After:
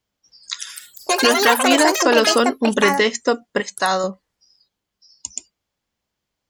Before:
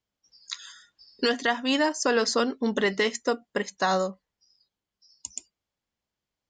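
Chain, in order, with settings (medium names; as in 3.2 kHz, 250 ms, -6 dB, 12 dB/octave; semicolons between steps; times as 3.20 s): ever faster or slower copies 272 ms, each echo +7 st, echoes 3; 3.60–4.04 s: bass shelf 490 Hz -8.5 dB; trim +7.5 dB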